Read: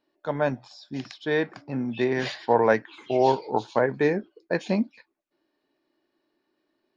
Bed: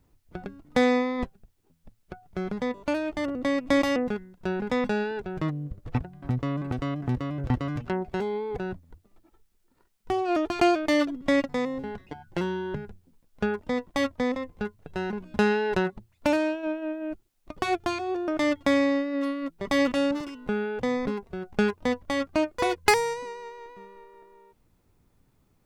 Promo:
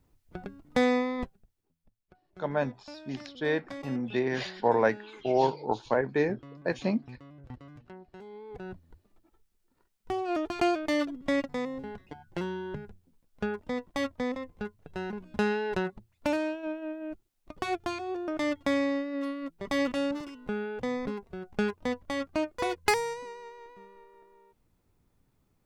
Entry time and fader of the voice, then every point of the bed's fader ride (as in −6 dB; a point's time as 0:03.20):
2.15 s, −4.0 dB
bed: 0:01.14 −3 dB
0:02.06 −19 dB
0:08.18 −19 dB
0:08.82 −5 dB